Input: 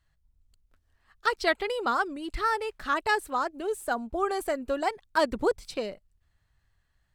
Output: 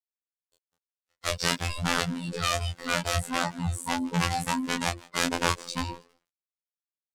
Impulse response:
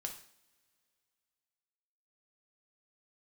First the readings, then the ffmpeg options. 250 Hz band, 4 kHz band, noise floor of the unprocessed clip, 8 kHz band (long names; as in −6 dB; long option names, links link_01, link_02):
+3.5 dB, +7.5 dB, −72 dBFS, +12.5 dB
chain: -filter_complex "[0:a]afftfilt=real='real(if(between(b,1,1008),(2*floor((b-1)/24)+1)*24-b,b),0)':imag='imag(if(between(b,1,1008),(2*floor((b-1)/24)+1)*24-b,b),0)*if(between(b,1,1008),-1,1)':win_size=2048:overlap=0.75,adynamicequalizer=threshold=0.00562:dfrequency=280:dqfactor=0.9:tfrequency=280:tqfactor=0.9:attack=5:release=100:ratio=0.375:range=3:mode=boostabove:tftype=bell,acrossover=split=150[link_01][link_02];[link_02]acontrast=47[link_03];[link_01][link_03]amix=inputs=2:normalize=0,bass=frequency=250:gain=7,treble=frequency=4000:gain=11,aeval=exprs='(mod(4.22*val(0)+1,2)-1)/4.22':channel_layout=same,lowpass=8600,asplit=4[link_04][link_05][link_06][link_07];[link_05]adelay=160,afreqshift=120,volume=-22dB[link_08];[link_06]adelay=320,afreqshift=240,volume=-30.2dB[link_09];[link_07]adelay=480,afreqshift=360,volume=-38.4dB[link_10];[link_04][link_08][link_09][link_10]amix=inputs=4:normalize=0,aeval=exprs='sgn(val(0))*max(abs(val(0))-0.00422,0)':channel_layout=same,flanger=delay=17.5:depth=5.3:speed=0.5,dynaudnorm=framelen=100:gausssize=11:maxgain=14dB,afftfilt=real='hypot(re,im)*cos(PI*b)':imag='0':win_size=2048:overlap=0.75,volume=-11dB"